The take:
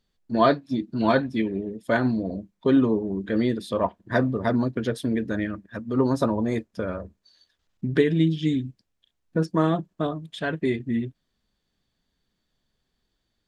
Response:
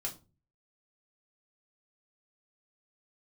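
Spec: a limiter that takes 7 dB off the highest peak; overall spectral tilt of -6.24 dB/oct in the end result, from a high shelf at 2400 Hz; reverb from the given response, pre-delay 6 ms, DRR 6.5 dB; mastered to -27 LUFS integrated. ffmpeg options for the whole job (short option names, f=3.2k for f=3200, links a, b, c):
-filter_complex "[0:a]highshelf=f=2.4k:g=-8,alimiter=limit=-13.5dB:level=0:latency=1,asplit=2[a][b];[1:a]atrim=start_sample=2205,adelay=6[c];[b][c]afir=irnorm=-1:irlink=0,volume=-7dB[d];[a][d]amix=inputs=2:normalize=0,volume=-1dB"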